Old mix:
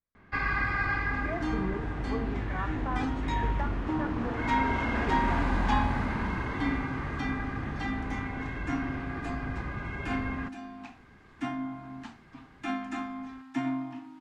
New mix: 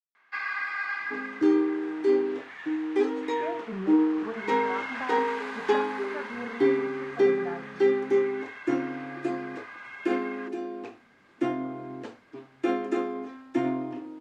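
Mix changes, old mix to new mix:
speech: entry +2.15 s
first sound: add high-pass filter 1,200 Hz 12 dB per octave
second sound: remove Chebyshev band-stop filter 270–750 Hz, order 3

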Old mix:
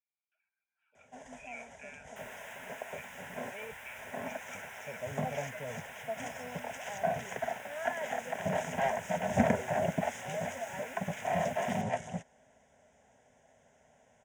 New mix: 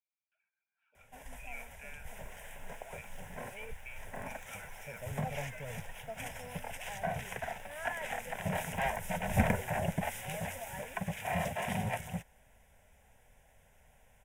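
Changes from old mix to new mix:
first sound: remove loudspeaker in its box 130–7,300 Hz, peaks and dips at 250 Hz +8 dB, 400 Hz +4 dB, 640 Hz +7 dB, 2,500 Hz −6 dB, 4,100 Hz −4 dB, 6,600 Hz +7 dB
second sound −10.5 dB

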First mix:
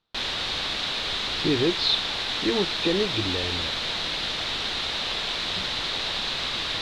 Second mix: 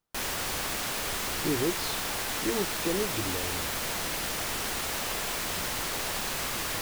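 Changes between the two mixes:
speech −5.5 dB
master: remove low-pass with resonance 3,800 Hz, resonance Q 4.9

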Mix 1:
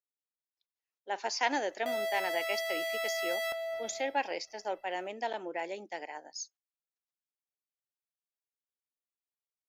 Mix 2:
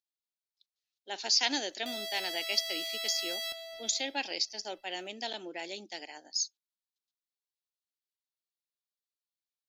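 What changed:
speech +5.0 dB
master: add octave-band graphic EQ 125/500/1,000/2,000/4,000 Hz −8/−9/−11/−7/+11 dB

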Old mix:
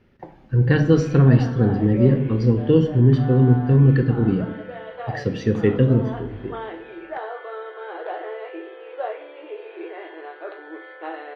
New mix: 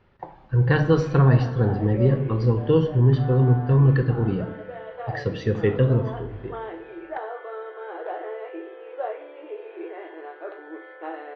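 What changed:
speech: add octave-band graphic EQ 250/1,000/4,000/8,000 Hz −8/+9/+7/+6 dB
master: add head-to-tape spacing loss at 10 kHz 22 dB

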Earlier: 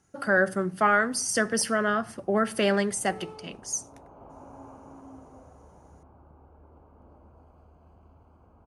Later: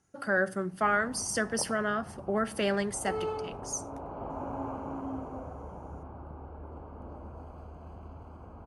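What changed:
speech −5.0 dB
background +10.0 dB

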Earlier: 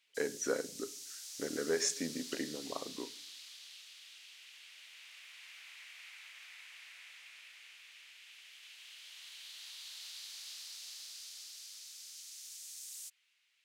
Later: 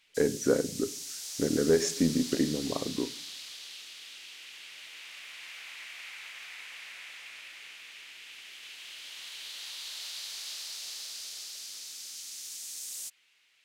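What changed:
background +7.5 dB
master: remove high-pass filter 1,200 Hz 6 dB per octave

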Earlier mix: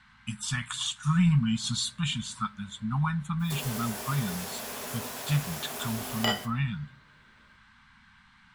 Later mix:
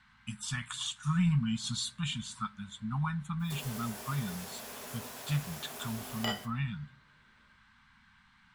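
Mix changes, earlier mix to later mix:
speech −5.0 dB
background −7.0 dB

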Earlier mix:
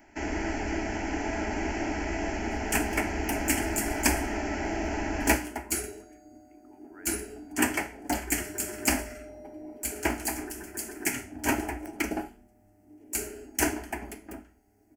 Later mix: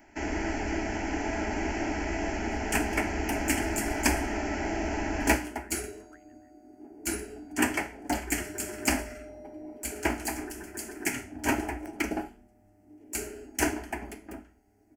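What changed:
speech: entry −2.55 s
second sound: add high-shelf EQ 9,200 Hz −7 dB

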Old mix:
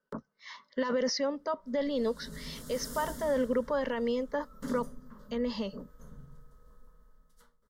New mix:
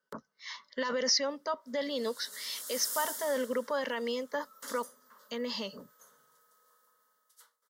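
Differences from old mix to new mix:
background: add high-pass filter 600 Hz 12 dB per octave
master: add spectral tilt +3 dB per octave

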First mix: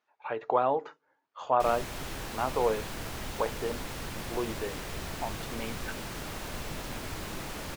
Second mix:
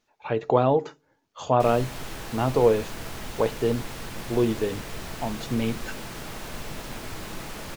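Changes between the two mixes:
speech: remove resonant band-pass 1,200 Hz, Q 0.94
reverb: on, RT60 0.30 s

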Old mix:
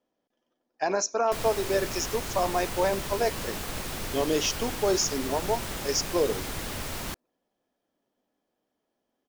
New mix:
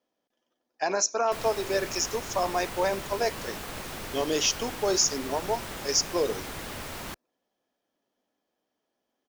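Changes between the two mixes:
background: add high-shelf EQ 3,200 Hz −10.5 dB
master: add spectral tilt +1.5 dB per octave

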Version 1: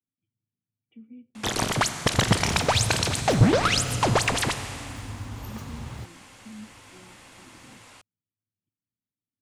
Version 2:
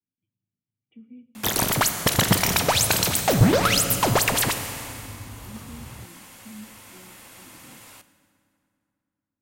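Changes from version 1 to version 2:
first sound: remove Bessel low-pass filter 7,000 Hz, order 6
second sound −4.0 dB
reverb: on, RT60 2.5 s

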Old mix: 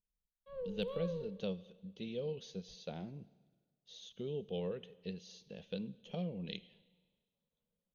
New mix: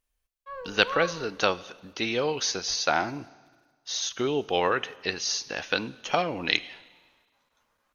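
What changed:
speech +11.0 dB
master: remove drawn EQ curve 120 Hz 0 dB, 190 Hz +13 dB, 290 Hz −11 dB, 480 Hz +1 dB, 760 Hz −16 dB, 1,400 Hz −25 dB, 2,200 Hz −18 dB, 3,400 Hz −6 dB, 5,400 Hz −22 dB, 8,400 Hz −11 dB

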